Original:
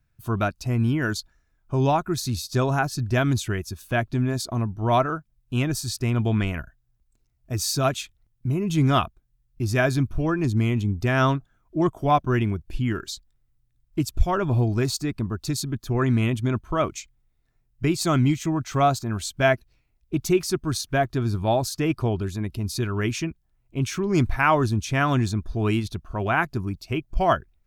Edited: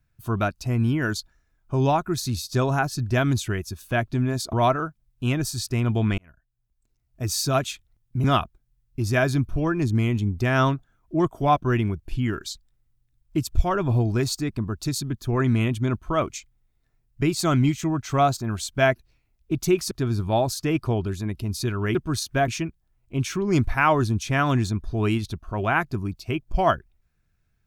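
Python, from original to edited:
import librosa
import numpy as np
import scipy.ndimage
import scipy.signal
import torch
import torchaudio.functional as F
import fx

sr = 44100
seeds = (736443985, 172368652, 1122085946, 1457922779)

y = fx.edit(x, sr, fx.cut(start_s=4.53, length_s=0.3),
    fx.fade_in_span(start_s=6.48, length_s=1.09),
    fx.cut(start_s=8.54, length_s=0.32),
    fx.move(start_s=20.53, length_s=0.53, to_s=23.1), tone=tone)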